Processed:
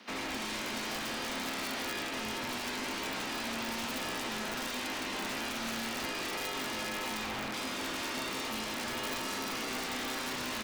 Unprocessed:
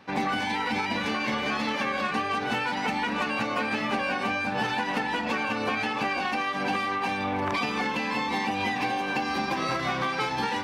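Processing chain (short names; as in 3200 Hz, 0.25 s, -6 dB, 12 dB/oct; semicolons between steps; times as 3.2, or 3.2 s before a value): spectral limiter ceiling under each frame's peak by 17 dB; in parallel at -1.5 dB: short-mantissa float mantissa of 2-bit; on the sum: limiter -19 dBFS, peak gain reduction 10.5 dB; bell 110 Hz +13.5 dB 1.1 oct; frequency shift +120 Hz; wavefolder -25 dBFS; notches 60/120/180/240/300/360/420 Hz; resonator 130 Hz, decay 0.89 s, harmonics all, mix 70%; tapped delay 0.169/0.359 s -15/-18.5 dB; on a send at -15.5 dB: reverb RT60 0.15 s, pre-delay 0.109 s; on the sum: wrapped overs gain 31 dB; gain +2 dB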